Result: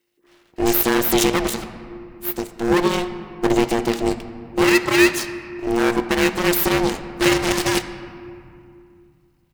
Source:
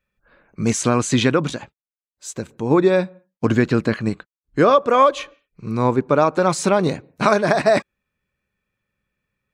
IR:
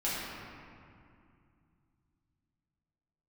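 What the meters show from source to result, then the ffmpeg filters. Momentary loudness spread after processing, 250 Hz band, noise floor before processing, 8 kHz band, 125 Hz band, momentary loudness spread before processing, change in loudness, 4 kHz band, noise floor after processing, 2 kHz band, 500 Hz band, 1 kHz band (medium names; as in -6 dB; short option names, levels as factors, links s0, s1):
13 LU, +1.0 dB, under -85 dBFS, +2.5 dB, -6.5 dB, 16 LU, -1.0 dB, +5.5 dB, -61 dBFS, +4.0 dB, -3.0 dB, -4.5 dB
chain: -filter_complex "[0:a]aecho=1:1:0.9:0.69,asplit=2[s0][s1];[s1]alimiter=limit=0.266:level=0:latency=1:release=114,volume=1[s2];[s0][s2]amix=inputs=2:normalize=0,aeval=exprs='abs(val(0))':c=same,crystalizer=i=2.5:c=0,aeval=exprs='val(0)*sin(2*PI*350*n/s)':c=same,asplit=2[s3][s4];[1:a]atrim=start_sample=2205,lowpass=8600[s5];[s4][s5]afir=irnorm=-1:irlink=0,volume=0.15[s6];[s3][s6]amix=inputs=2:normalize=0,volume=0.596"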